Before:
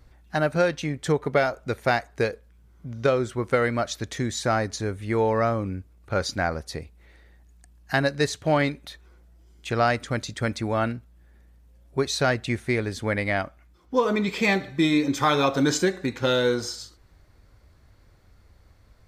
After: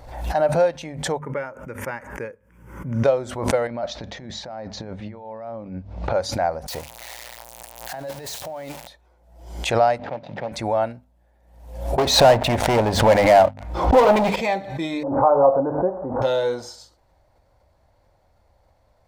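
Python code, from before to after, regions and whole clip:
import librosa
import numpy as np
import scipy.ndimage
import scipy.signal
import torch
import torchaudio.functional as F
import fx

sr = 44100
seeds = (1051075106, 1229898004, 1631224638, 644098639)

y = fx.chain(x, sr, fx.highpass(hz=130.0, slope=12),
    fx.high_shelf(hz=3900.0, db=-7.5),
    fx.fixed_phaser(hz=1700.0, stages=4), at=(1.19, 3.04))
y = fx.chain(y, sr, fx.lowpass(hz=5100.0, slope=24),
    fx.peak_eq(hz=200.0, db=9.0, octaves=0.62),
    fx.over_compress(threshold_db=-28.0, ratio=-0.5), at=(3.67, 6.14))
y = fx.chain(y, sr, fx.crossing_spikes(level_db=-16.0),
    fx.high_shelf(hz=4700.0, db=-11.5),
    fx.over_compress(threshold_db=-30.0, ratio=-1.0), at=(6.68, 8.87))
y = fx.chain(y, sr, fx.median_filter(points=41),
    fx.cabinet(low_hz=140.0, low_slope=24, high_hz=4700.0, hz=(250.0, 360.0, 800.0, 2200.0), db=(-5, -4, 3, 5)), at=(9.98, 10.52))
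y = fx.chain(y, sr, fx.lowpass(hz=2200.0, slope=6),
    fx.leveller(passes=5),
    fx.pre_swell(db_per_s=110.0), at=(11.98, 14.36))
y = fx.chain(y, sr, fx.zero_step(step_db=-32.0),
    fx.steep_lowpass(hz=1300.0, slope=48),
    fx.peak_eq(hz=540.0, db=5.0, octaves=0.64), at=(15.03, 16.22))
y = fx.band_shelf(y, sr, hz=710.0, db=12.5, octaves=1.1)
y = fx.hum_notches(y, sr, base_hz=50, count=5)
y = fx.pre_swell(y, sr, db_per_s=73.0)
y = y * librosa.db_to_amplitude(-6.5)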